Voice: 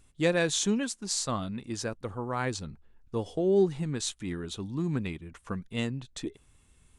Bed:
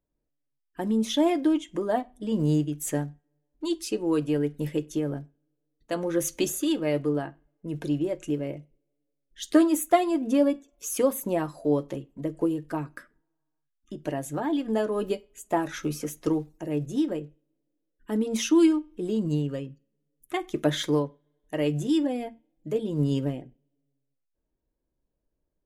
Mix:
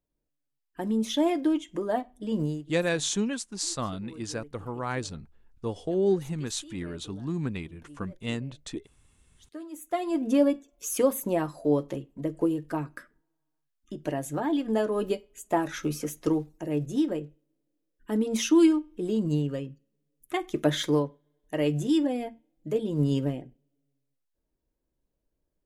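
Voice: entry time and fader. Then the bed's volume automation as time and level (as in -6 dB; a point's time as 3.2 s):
2.50 s, -0.5 dB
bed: 2.42 s -2 dB
2.72 s -22.5 dB
9.59 s -22.5 dB
10.19 s 0 dB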